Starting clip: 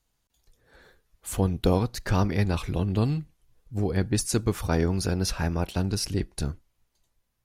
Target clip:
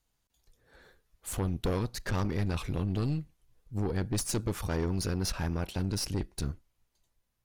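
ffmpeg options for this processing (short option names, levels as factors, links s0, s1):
-af "aeval=exprs='(tanh(15.8*val(0)+0.5)-tanh(0.5))/15.8':c=same,volume=0.891"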